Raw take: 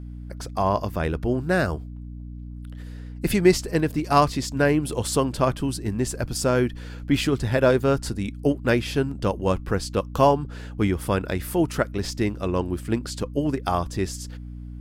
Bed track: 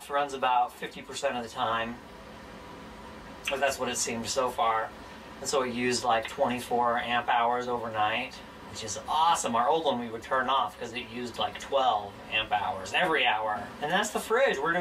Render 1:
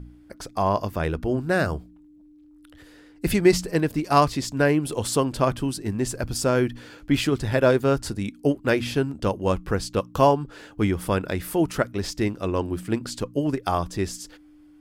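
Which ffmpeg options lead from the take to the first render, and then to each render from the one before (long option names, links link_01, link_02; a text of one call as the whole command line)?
ffmpeg -i in.wav -af "bandreject=frequency=60:width_type=h:width=4,bandreject=frequency=120:width_type=h:width=4,bandreject=frequency=180:width_type=h:width=4,bandreject=frequency=240:width_type=h:width=4" out.wav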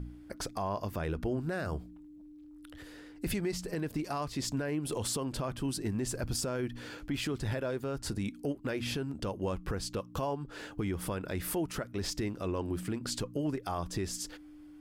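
ffmpeg -i in.wav -af "acompressor=threshold=-28dB:ratio=6,alimiter=level_in=0.5dB:limit=-24dB:level=0:latency=1:release=11,volume=-0.5dB" out.wav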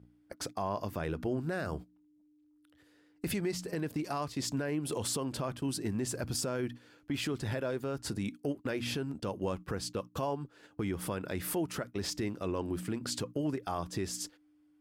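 ffmpeg -i in.wav -af "highpass=95,agate=range=-15dB:threshold=-41dB:ratio=16:detection=peak" out.wav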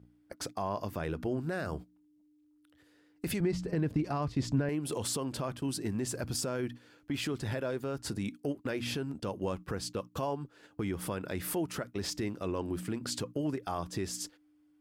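ffmpeg -i in.wav -filter_complex "[0:a]asettb=1/sr,asplit=3[link_01][link_02][link_03];[link_01]atrim=end=3.404[link_04];[link_02]atrim=start=3.4:end=4.69,asetpts=PTS-STARTPTS,afade=type=in:duration=0.004:curve=qsin,afade=type=out:start_time=1.286:duration=0.004:curve=qsin,aemphasis=mode=reproduction:type=bsi[link_05];[link_03]atrim=start=4.686[link_06];[link_04][link_05]acrossfade=duration=0.004:curve1=hsin:curve2=qsin[link_07];[link_07][link_06]acrossfade=duration=0.004:curve1=qsin:curve2=hsin" out.wav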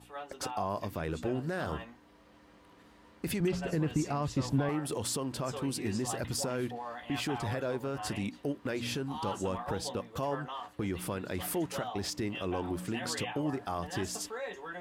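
ffmpeg -i in.wav -i bed.wav -filter_complex "[1:a]volume=-15dB[link_01];[0:a][link_01]amix=inputs=2:normalize=0" out.wav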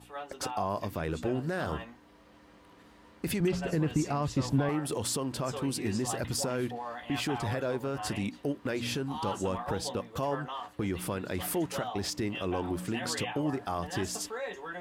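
ffmpeg -i in.wav -af "volume=2dB" out.wav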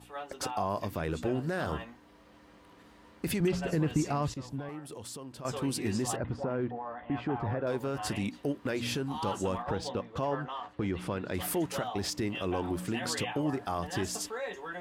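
ffmpeg -i in.wav -filter_complex "[0:a]asettb=1/sr,asplit=3[link_01][link_02][link_03];[link_01]atrim=end=6.164[link_04];[link_02]atrim=start=6.16:end=7.67,asetpts=PTS-STARTPTS,afade=type=in:duration=0.004:curve=qsin,afade=type=out:start_time=1.506:duration=0.004:curve=qsin,lowpass=1400[link_05];[link_03]atrim=start=7.666[link_06];[link_04][link_05]acrossfade=duration=0.004:curve1=hsin:curve2=qsin[link_07];[link_07][link_06]acrossfade=duration=0.004:curve1=qsin:curve2=hsin,asettb=1/sr,asplit=3[link_08][link_09][link_10];[link_08]atrim=end=9.624[link_11];[link_09]atrim=start=9.62:end=11.34,asetpts=PTS-STARTPTS,afade=type=in:duration=0.004:curve=qsin,afade=type=out:start_time=1.716:duration=0.004:curve=qsin,adynamicsmooth=sensitivity=3.5:basefreq=4800[link_12];[link_10]atrim=start=11.336[link_13];[link_11][link_12]acrossfade=duration=0.004:curve1=hsin:curve2=qsin[link_14];[link_14][link_13]acrossfade=duration=0.004:curve1=qsin:curve2=hsin,asplit=3[link_15][link_16][link_17];[link_15]atrim=end=4.342[link_18];[link_16]atrim=start=4.338:end=5.452,asetpts=PTS-STARTPTS,volume=-11dB[link_19];[link_17]atrim=start=5.448[link_20];[link_18][link_19]acrossfade=duration=0.004:curve1=hsin:curve2=hsin[link_21];[link_21][link_20]acrossfade=duration=0.004:curve1=hsin:curve2=hsin" out.wav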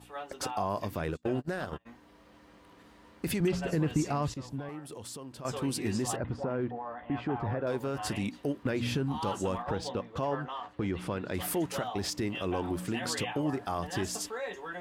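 ffmpeg -i in.wav -filter_complex "[0:a]asplit=3[link_01][link_02][link_03];[link_01]afade=type=out:start_time=1.1:duration=0.02[link_04];[link_02]agate=range=-33dB:threshold=-33dB:ratio=16:release=100:detection=peak,afade=type=in:start_time=1.1:duration=0.02,afade=type=out:start_time=1.85:duration=0.02[link_05];[link_03]afade=type=in:start_time=1.85:duration=0.02[link_06];[link_04][link_05][link_06]amix=inputs=3:normalize=0,asettb=1/sr,asplit=3[link_07][link_08][link_09];[link_07]atrim=end=8.634[link_10];[link_08]atrim=start=8.63:end=9.21,asetpts=PTS-STARTPTS,afade=type=in:duration=0.004:curve=qsin,afade=type=out:start_time=0.576:duration=0.004:curve=qsin,bass=frequency=250:gain=6,treble=frequency=4000:gain=-5[link_11];[link_09]atrim=start=9.206[link_12];[link_10][link_11]acrossfade=duration=0.004:curve1=hsin:curve2=qsin[link_13];[link_13][link_12]acrossfade=duration=0.004:curve1=qsin:curve2=hsin" out.wav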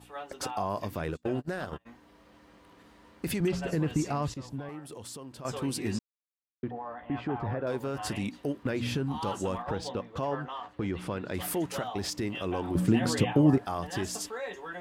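ffmpeg -i in.wav -filter_complex "[0:a]asettb=1/sr,asplit=3[link_01][link_02][link_03];[link_01]atrim=end=12.754[link_04];[link_02]atrim=start=12.75:end=13.58,asetpts=PTS-STARTPTS,afade=type=in:duration=0.004:curve=qsin,afade=type=out:start_time=0.826:duration=0.004:curve=qsin,equalizer=frequency=150:width=0.31:gain=12[link_05];[link_03]atrim=start=13.576[link_06];[link_04][link_05]acrossfade=duration=0.004:curve1=hsin:curve2=qsin[link_07];[link_07][link_06]acrossfade=duration=0.004:curve1=qsin:curve2=hsin,asplit=3[link_08][link_09][link_10];[link_08]atrim=end=5.99,asetpts=PTS-STARTPTS,afade=type=out:start_time=5.986:duration=0.004:curve=hsin[link_11];[link_09]atrim=start=5.99:end=6.63,asetpts=PTS-STARTPTS,volume=0[link_12];[link_10]atrim=start=6.63,asetpts=PTS-STARTPTS,afade=type=in:duration=0.004:curve=hsin[link_13];[link_11][link_12][link_13]concat=n=3:v=0:a=1" out.wav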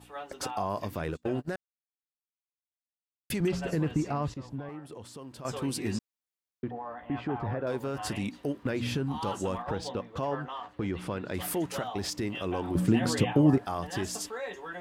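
ffmpeg -i in.wav -filter_complex "[0:a]asettb=1/sr,asplit=3[link_01][link_02][link_03];[link_01]atrim=end=3.884[link_04];[link_02]atrim=start=3.88:end=5.17,asetpts=PTS-STARTPTS,afade=type=in:duration=0.004:curve=qsin,afade=type=out:start_time=1.286:duration=0.004:curve=qsin,highshelf=frequency=4200:gain=-10[link_05];[link_03]atrim=start=5.166[link_06];[link_04][link_05]acrossfade=duration=0.004:curve1=hsin:curve2=qsin[link_07];[link_07][link_06]acrossfade=duration=0.004:curve1=qsin:curve2=hsin,asplit=3[link_08][link_09][link_10];[link_08]atrim=end=1.56,asetpts=PTS-STARTPTS,afade=type=out:start_time=1.556:duration=0.004:curve=hsin[link_11];[link_09]atrim=start=1.56:end=3.3,asetpts=PTS-STARTPTS,volume=0[link_12];[link_10]atrim=start=3.3,asetpts=PTS-STARTPTS,afade=type=in:duration=0.004:curve=hsin[link_13];[link_11][link_12][link_13]concat=n=3:v=0:a=1" out.wav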